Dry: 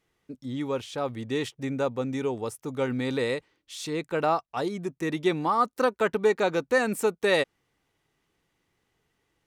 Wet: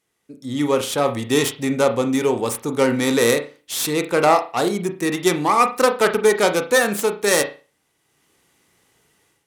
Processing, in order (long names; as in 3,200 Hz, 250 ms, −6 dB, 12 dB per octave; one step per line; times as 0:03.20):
stylus tracing distortion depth 0.2 ms
high-pass filter 130 Hz 6 dB per octave
parametric band 9,900 Hz +11.5 dB 1.4 octaves
automatic gain control gain up to 12.5 dB
on a send: convolution reverb, pre-delay 34 ms, DRR 7 dB
on the sum: level −1.5 dB